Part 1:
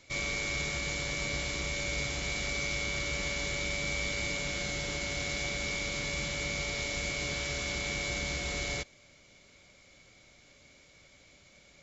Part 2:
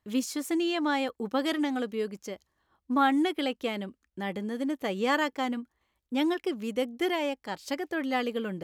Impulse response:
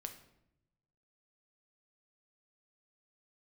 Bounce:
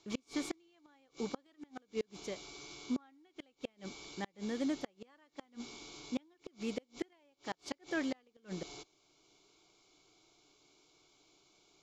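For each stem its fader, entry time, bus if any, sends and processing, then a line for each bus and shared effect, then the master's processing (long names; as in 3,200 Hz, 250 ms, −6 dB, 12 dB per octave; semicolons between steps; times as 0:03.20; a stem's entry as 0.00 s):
−3.5 dB, 0.00 s, no send, low shelf with overshoot 220 Hz −6 dB, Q 3; phaser with its sweep stopped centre 370 Hz, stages 8; automatic ducking −7 dB, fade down 1.50 s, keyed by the second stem
−5.0 dB, 0.00 s, send −13 dB, high-pass filter 79 Hz 6 dB per octave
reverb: on, RT60 0.80 s, pre-delay 6 ms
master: low-pass filter 6,500 Hz 12 dB per octave; low-shelf EQ 63 Hz −5 dB; gate with flip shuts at −25 dBFS, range −35 dB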